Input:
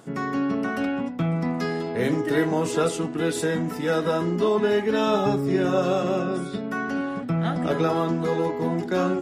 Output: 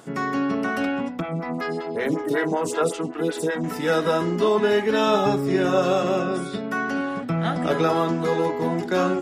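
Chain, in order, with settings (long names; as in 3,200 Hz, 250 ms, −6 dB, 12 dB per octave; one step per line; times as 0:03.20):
low-shelf EQ 360 Hz −5.5 dB
0:01.20–0:03.64: phaser with staggered stages 5.3 Hz
level +4 dB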